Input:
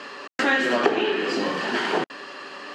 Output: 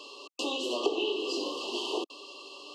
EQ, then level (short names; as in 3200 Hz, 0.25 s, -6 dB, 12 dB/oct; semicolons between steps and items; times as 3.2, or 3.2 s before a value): steep high-pass 310 Hz 36 dB/oct; brick-wall FIR band-stop 1200–2600 Hz; bell 790 Hz -11.5 dB 1.7 oct; -1.5 dB